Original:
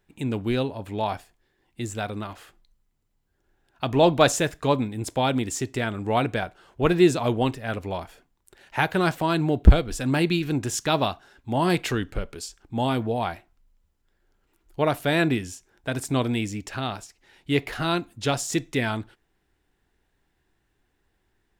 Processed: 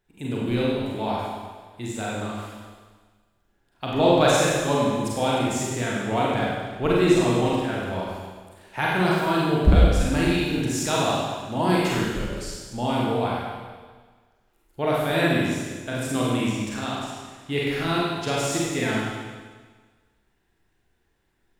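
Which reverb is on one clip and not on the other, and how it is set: Schroeder reverb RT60 1.5 s, combs from 33 ms, DRR -5.5 dB; gain -5 dB

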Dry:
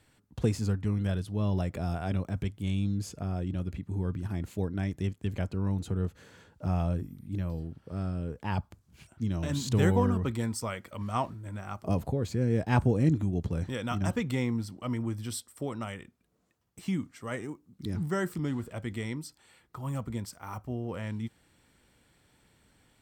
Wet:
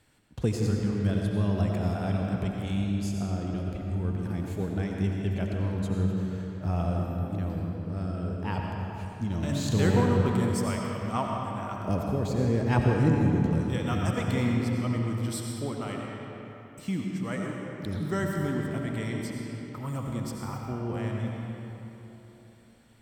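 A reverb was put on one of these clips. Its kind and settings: digital reverb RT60 3.5 s, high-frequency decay 0.65×, pre-delay 50 ms, DRR -0.5 dB

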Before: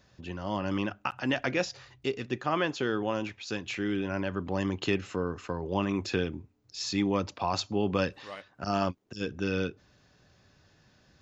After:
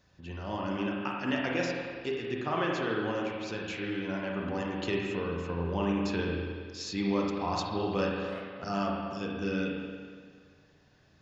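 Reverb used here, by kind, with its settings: spring tank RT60 1.8 s, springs 35/47 ms, chirp 35 ms, DRR -2 dB; gain -5 dB

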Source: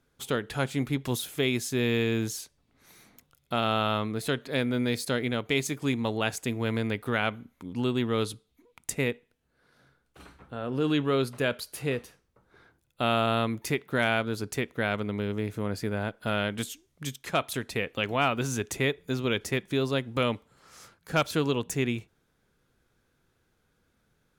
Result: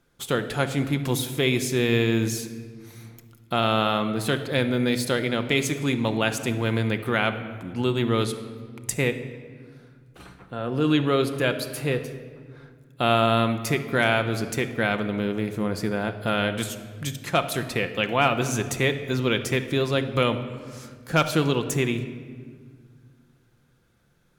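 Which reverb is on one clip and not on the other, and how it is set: shoebox room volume 2600 m³, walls mixed, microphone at 0.84 m; gain +4 dB

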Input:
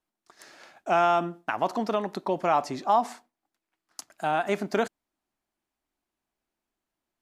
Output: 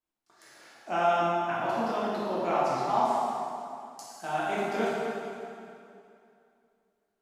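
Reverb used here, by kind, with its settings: plate-style reverb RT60 2.6 s, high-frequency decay 0.85×, DRR -8.5 dB; gain -10.5 dB

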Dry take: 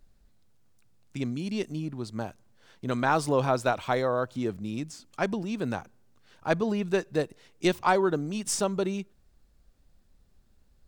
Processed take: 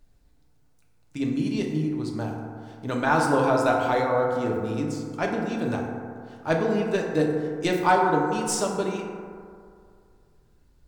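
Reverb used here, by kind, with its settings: FDN reverb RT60 2.3 s, low-frequency decay 0.9×, high-frequency decay 0.3×, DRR -1 dB

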